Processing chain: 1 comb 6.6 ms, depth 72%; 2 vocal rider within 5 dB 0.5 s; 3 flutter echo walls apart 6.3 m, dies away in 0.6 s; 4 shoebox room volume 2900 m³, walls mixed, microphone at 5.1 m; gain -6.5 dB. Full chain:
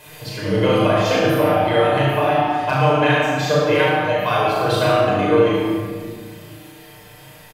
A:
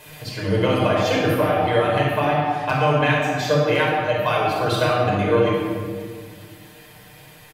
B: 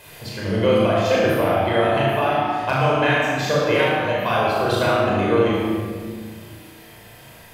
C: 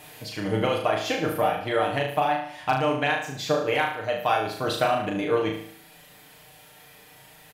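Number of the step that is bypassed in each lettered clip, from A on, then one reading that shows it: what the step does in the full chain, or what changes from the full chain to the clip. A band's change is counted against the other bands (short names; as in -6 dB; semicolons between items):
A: 3, loudness change -2.5 LU; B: 1, loudness change -2.0 LU; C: 4, echo-to-direct 6.5 dB to -1.0 dB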